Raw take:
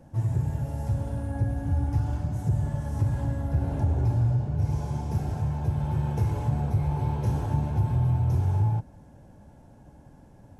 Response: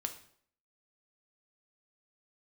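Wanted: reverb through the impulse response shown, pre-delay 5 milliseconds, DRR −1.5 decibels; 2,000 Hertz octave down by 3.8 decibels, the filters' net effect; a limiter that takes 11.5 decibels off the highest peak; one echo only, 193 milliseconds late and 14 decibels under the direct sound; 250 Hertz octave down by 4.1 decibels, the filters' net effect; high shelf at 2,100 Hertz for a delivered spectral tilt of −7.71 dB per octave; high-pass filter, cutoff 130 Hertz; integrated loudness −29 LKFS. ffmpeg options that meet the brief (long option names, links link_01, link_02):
-filter_complex "[0:a]highpass=130,equalizer=frequency=250:width_type=o:gain=-5,equalizer=frequency=2000:width_type=o:gain=-7,highshelf=frequency=2100:gain=3.5,alimiter=level_in=6dB:limit=-24dB:level=0:latency=1,volume=-6dB,aecho=1:1:193:0.2,asplit=2[link_01][link_02];[1:a]atrim=start_sample=2205,adelay=5[link_03];[link_02][link_03]afir=irnorm=-1:irlink=0,volume=1.5dB[link_04];[link_01][link_04]amix=inputs=2:normalize=0,volume=7.5dB"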